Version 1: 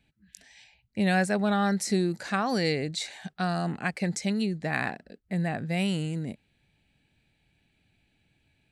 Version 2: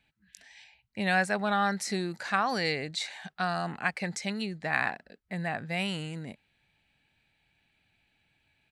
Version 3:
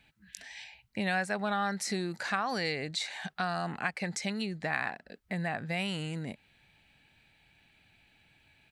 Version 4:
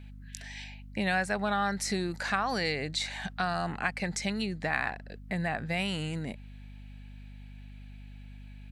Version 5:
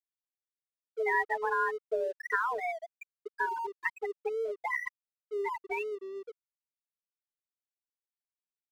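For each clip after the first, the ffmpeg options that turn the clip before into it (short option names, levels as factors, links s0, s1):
-af "firequalizer=gain_entry='entry(330,0);entry(920,10);entry(7500,3)':delay=0.05:min_phase=1,volume=0.447"
-af "acompressor=threshold=0.00631:ratio=2,volume=2.24"
-af "aeval=exprs='val(0)+0.00447*(sin(2*PI*50*n/s)+sin(2*PI*2*50*n/s)/2+sin(2*PI*3*50*n/s)/3+sin(2*PI*4*50*n/s)/4+sin(2*PI*5*50*n/s)/5)':c=same,volume=1.26"
-af "highpass=f=160:t=q:w=0.5412,highpass=f=160:t=q:w=1.307,lowpass=f=3500:t=q:w=0.5176,lowpass=f=3500:t=q:w=0.7071,lowpass=f=3500:t=q:w=1.932,afreqshift=230,afftfilt=real='re*gte(hypot(re,im),0.141)':imag='im*gte(hypot(re,im),0.141)':win_size=1024:overlap=0.75,aeval=exprs='sgn(val(0))*max(abs(val(0))-0.00168,0)':c=same,volume=1.26"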